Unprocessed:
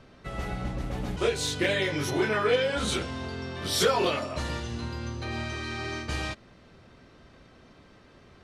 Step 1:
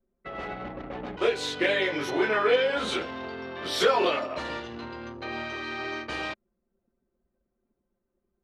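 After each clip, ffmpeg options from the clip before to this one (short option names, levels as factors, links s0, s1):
-filter_complex "[0:a]anlmdn=0.631,acrossover=split=250 4200:gain=0.126 1 0.224[s0][s1][s2];[s0][s1][s2]amix=inputs=3:normalize=0,volume=1.33"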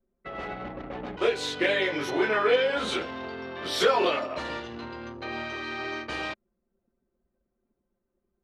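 -af anull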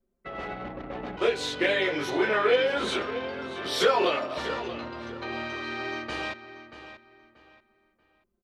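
-filter_complex "[0:a]asplit=2[s0][s1];[s1]adelay=634,lowpass=f=4600:p=1,volume=0.251,asplit=2[s2][s3];[s3]adelay=634,lowpass=f=4600:p=1,volume=0.29,asplit=2[s4][s5];[s5]adelay=634,lowpass=f=4600:p=1,volume=0.29[s6];[s0][s2][s4][s6]amix=inputs=4:normalize=0"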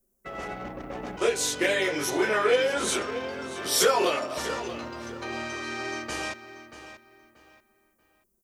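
-af "aexciter=amount=6.4:drive=5.1:freq=5600"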